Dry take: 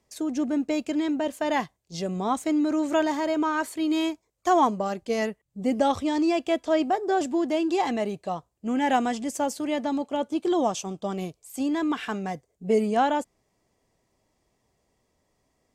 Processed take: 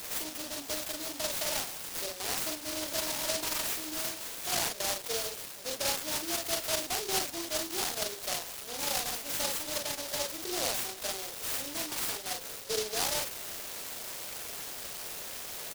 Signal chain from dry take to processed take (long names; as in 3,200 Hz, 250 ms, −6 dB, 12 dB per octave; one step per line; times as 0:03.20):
converter with a step at zero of −31.5 dBFS
high-pass filter 460 Hz 24 dB per octave
spectral tilt +2 dB per octave
brickwall limiter −19.5 dBFS, peak gain reduction 10.5 dB
double-tracking delay 42 ms −2 dB
short delay modulated by noise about 4,600 Hz, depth 0.28 ms
level −5.5 dB